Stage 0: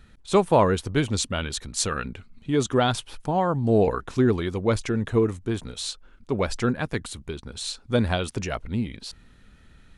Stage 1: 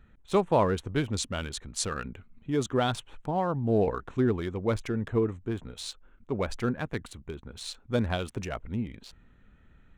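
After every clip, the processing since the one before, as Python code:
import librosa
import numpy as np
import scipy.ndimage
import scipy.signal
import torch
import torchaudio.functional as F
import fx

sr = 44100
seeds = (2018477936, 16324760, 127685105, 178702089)

y = fx.wiener(x, sr, points=9)
y = y * 10.0 ** (-5.0 / 20.0)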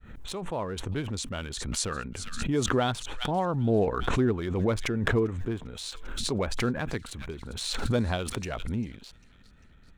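y = fx.fade_in_head(x, sr, length_s=1.73)
y = fx.echo_wet_highpass(y, sr, ms=397, feedback_pct=48, hz=2300.0, wet_db=-17.0)
y = fx.pre_swell(y, sr, db_per_s=35.0)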